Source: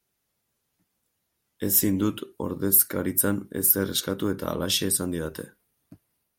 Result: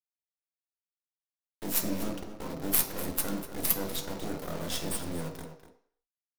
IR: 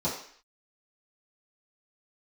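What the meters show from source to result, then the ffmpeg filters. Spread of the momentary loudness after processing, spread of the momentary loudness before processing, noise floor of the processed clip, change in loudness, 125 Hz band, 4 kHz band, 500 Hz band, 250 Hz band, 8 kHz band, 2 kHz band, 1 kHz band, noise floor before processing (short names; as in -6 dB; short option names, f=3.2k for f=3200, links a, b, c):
14 LU, 14 LU, under -85 dBFS, -8.0 dB, -8.0 dB, -8.0 dB, -8.5 dB, -9.0 dB, -8.5 dB, -5.5 dB, -3.0 dB, -78 dBFS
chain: -filter_complex "[0:a]acrusher=bits=3:dc=4:mix=0:aa=0.000001,asplit=2[a][b];[b]adelay=244.9,volume=-11dB,highshelf=f=4k:g=-5.51[c];[a][c]amix=inputs=2:normalize=0,asplit=2[d][e];[1:a]atrim=start_sample=2205,adelay=13[f];[e][f]afir=irnorm=-1:irlink=0,volume=-11.5dB[g];[d][g]amix=inputs=2:normalize=0,volume=-7dB"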